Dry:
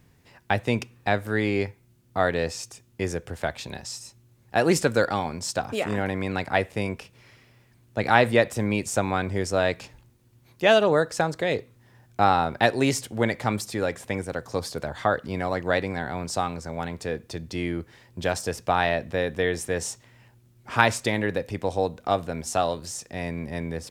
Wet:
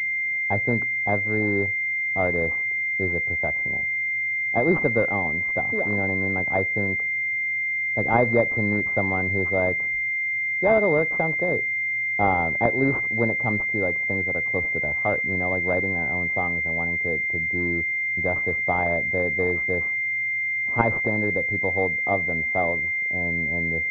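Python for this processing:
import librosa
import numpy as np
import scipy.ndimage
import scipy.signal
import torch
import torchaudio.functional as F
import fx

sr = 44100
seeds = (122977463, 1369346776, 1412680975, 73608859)

y = fx.env_lowpass(x, sr, base_hz=600.0, full_db=-19.5)
y = fx.pwm(y, sr, carrier_hz=2100.0)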